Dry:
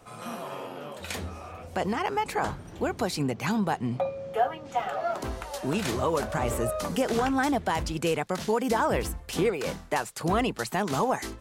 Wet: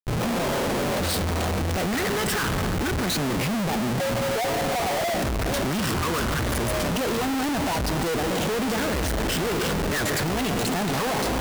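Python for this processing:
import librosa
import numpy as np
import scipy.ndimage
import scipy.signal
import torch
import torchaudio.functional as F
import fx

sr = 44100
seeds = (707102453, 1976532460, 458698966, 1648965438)

y = fx.high_shelf(x, sr, hz=4800.0, db=9.0, at=(0.52, 2.42))
y = fx.echo_wet_highpass(y, sr, ms=301, feedback_pct=72, hz=2000.0, wet_db=-14.5)
y = fx.phaser_stages(y, sr, stages=12, low_hz=690.0, high_hz=2500.0, hz=0.29, feedback_pct=25)
y = fx.rev_freeverb(y, sr, rt60_s=1.9, hf_ratio=0.75, predelay_ms=85, drr_db=9.5)
y = fx.schmitt(y, sr, flips_db=-43.5)
y = y * librosa.db_to_amplitude(5.5)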